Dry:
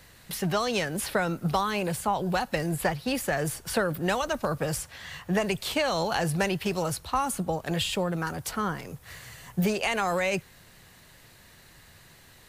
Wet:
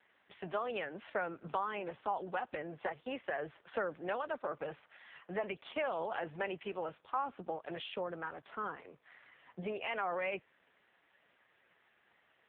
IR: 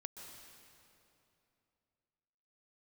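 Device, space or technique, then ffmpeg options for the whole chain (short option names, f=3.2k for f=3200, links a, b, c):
telephone: -af "highpass=350,lowpass=3.2k,volume=-7.5dB" -ar 8000 -c:a libopencore_amrnb -b:a 5150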